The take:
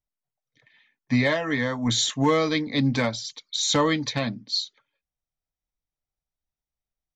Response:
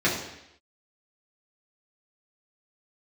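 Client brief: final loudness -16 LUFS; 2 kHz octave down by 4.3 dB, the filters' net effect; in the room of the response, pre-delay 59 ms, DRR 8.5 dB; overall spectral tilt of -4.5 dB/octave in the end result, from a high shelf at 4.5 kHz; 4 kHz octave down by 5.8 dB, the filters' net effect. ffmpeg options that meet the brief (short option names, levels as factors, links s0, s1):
-filter_complex "[0:a]equalizer=f=2000:t=o:g=-4,equalizer=f=4000:t=o:g=-8.5,highshelf=f=4500:g=6,asplit=2[s0][s1];[1:a]atrim=start_sample=2205,adelay=59[s2];[s1][s2]afir=irnorm=-1:irlink=0,volume=0.0631[s3];[s0][s3]amix=inputs=2:normalize=0,volume=2.66"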